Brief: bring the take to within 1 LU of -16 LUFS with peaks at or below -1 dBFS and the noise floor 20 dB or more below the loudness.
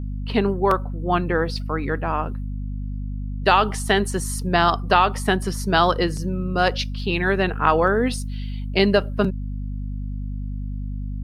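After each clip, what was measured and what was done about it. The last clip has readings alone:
hum 50 Hz; highest harmonic 250 Hz; hum level -26 dBFS; loudness -22.5 LUFS; peak level -3.5 dBFS; loudness target -16.0 LUFS
-> hum notches 50/100/150/200/250 Hz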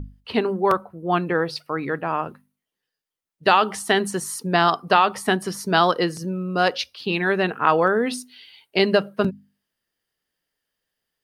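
hum not found; loudness -22.0 LUFS; peak level -4.0 dBFS; loudness target -16.0 LUFS
-> trim +6 dB; peak limiter -1 dBFS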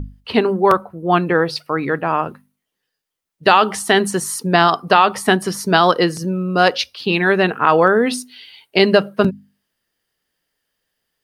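loudness -16.5 LUFS; peak level -1.0 dBFS; noise floor -79 dBFS

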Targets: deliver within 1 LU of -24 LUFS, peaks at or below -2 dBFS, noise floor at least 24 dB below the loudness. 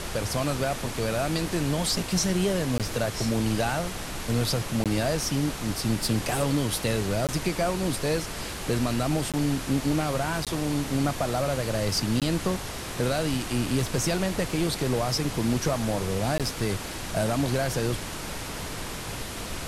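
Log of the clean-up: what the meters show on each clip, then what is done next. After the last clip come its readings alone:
dropouts 7; longest dropout 17 ms; noise floor -35 dBFS; noise floor target -51 dBFS; loudness -27.0 LUFS; peak level -13.0 dBFS; loudness target -24.0 LUFS
-> interpolate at 2.78/4.84/7.27/9.32/10.45/12.20/16.38 s, 17 ms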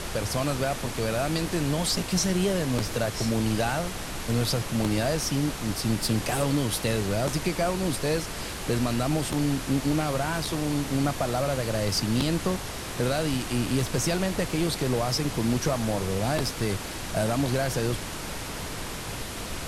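dropouts 0; noise floor -35 dBFS; noise floor target -51 dBFS
-> noise print and reduce 16 dB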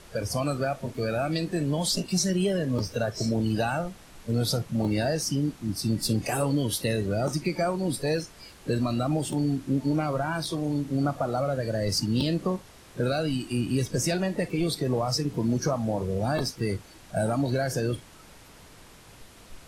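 noise floor -51 dBFS; noise floor target -52 dBFS
-> noise print and reduce 6 dB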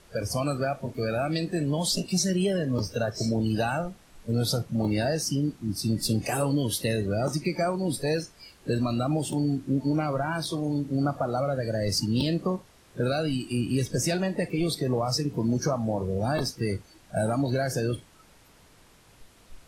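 noise floor -56 dBFS; loudness -28.0 LUFS; peak level -14.0 dBFS; loudness target -24.0 LUFS
-> trim +4 dB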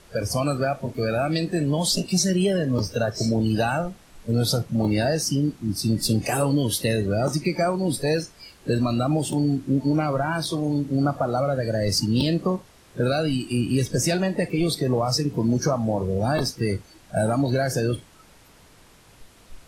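loudness -24.0 LUFS; peak level -10.0 dBFS; noise floor -52 dBFS

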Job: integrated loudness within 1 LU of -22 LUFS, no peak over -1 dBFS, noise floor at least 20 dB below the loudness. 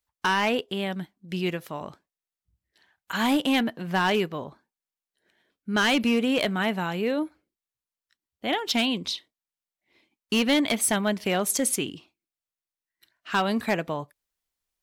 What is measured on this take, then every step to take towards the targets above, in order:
clipped samples 0.7%; clipping level -17.0 dBFS; loudness -25.5 LUFS; peak level -17.0 dBFS; loudness target -22.0 LUFS
-> clip repair -17 dBFS; trim +3.5 dB

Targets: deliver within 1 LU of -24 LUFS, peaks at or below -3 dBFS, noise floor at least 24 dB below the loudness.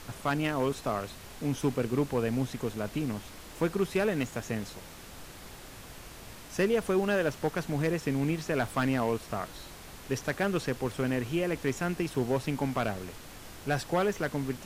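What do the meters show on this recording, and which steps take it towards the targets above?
clipped samples 0.3%; clipping level -18.5 dBFS; noise floor -47 dBFS; noise floor target -55 dBFS; loudness -31.0 LUFS; peak level -18.5 dBFS; loudness target -24.0 LUFS
-> clip repair -18.5 dBFS; noise print and reduce 8 dB; trim +7 dB

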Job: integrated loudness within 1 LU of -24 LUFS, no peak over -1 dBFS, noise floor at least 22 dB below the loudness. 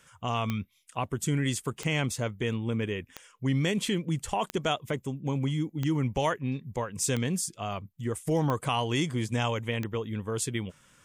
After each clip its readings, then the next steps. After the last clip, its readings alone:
clicks found 8; loudness -30.5 LUFS; peak level -15.0 dBFS; loudness target -24.0 LUFS
-> de-click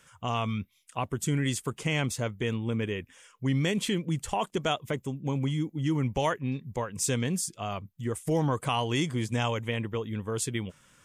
clicks found 0; loudness -30.5 LUFS; peak level -16.0 dBFS; loudness target -24.0 LUFS
-> trim +6.5 dB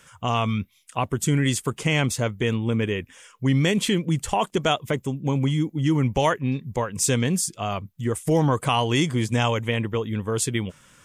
loudness -24.0 LUFS; peak level -9.5 dBFS; noise floor -58 dBFS

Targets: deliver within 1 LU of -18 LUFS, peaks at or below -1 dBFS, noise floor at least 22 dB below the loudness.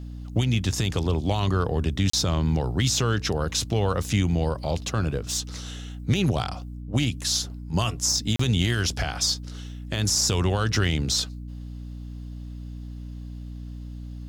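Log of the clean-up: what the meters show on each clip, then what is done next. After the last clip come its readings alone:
dropouts 2; longest dropout 34 ms; hum 60 Hz; highest harmonic 300 Hz; hum level -33 dBFS; loudness -25.0 LUFS; peak level -11.0 dBFS; loudness target -18.0 LUFS
-> interpolate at 2.10/8.36 s, 34 ms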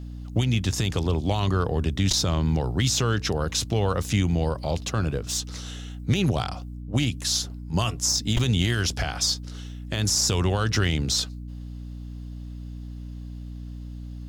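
dropouts 0; hum 60 Hz; highest harmonic 300 Hz; hum level -33 dBFS
-> hum notches 60/120/180/240/300 Hz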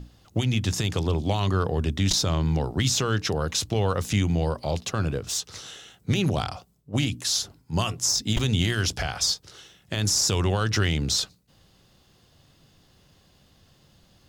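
hum not found; loudness -25.0 LUFS; peak level -9.5 dBFS; loudness target -18.0 LUFS
-> trim +7 dB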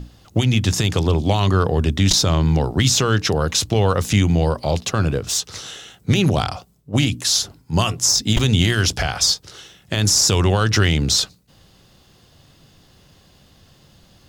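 loudness -18.0 LUFS; peak level -2.5 dBFS; noise floor -53 dBFS

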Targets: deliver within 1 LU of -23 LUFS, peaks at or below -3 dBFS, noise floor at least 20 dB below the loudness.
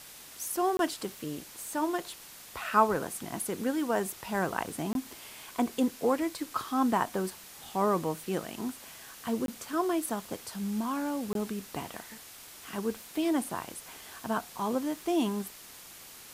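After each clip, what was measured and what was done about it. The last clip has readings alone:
dropouts 4; longest dropout 22 ms; noise floor -49 dBFS; noise floor target -52 dBFS; loudness -32.0 LUFS; peak level -10.5 dBFS; loudness target -23.0 LUFS
-> interpolate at 0.77/4.93/9.46/11.33 s, 22 ms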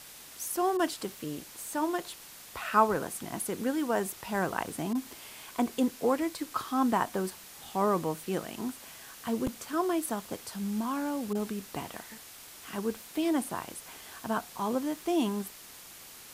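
dropouts 0; noise floor -49 dBFS; noise floor target -52 dBFS
-> noise reduction 6 dB, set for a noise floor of -49 dBFS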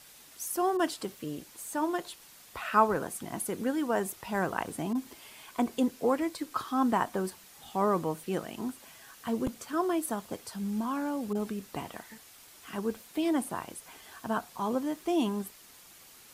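noise floor -54 dBFS; loudness -32.0 LUFS; peak level -11.0 dBFS; loudness target -23.0 LUFS
-> trim +9 dB; peak limiter -3 dBFS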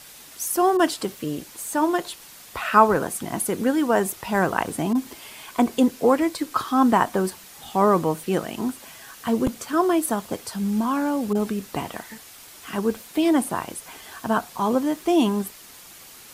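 loudness -23.0 LUFS; peak level -3.0 dBFS; noise floor -45 dBFS

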